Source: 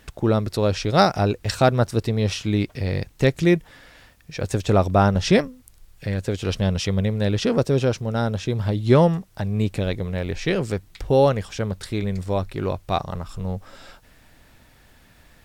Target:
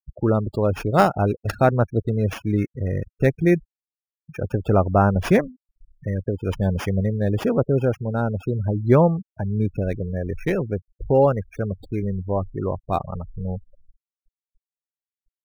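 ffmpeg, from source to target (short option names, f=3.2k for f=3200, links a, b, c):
-filter_complex "[0:a]afftfilt=real='re*gte(hypot(re,im),0.0562)':imag='im*gte(hypot(re,im),0.0562)':win_size=1024:overlap=0.75,acrossover=split=3000[a][b];[b]acrusher=samples=11:mix=1:aa=0.000001[c];[a][c]amix=inputs=2:normalize=0"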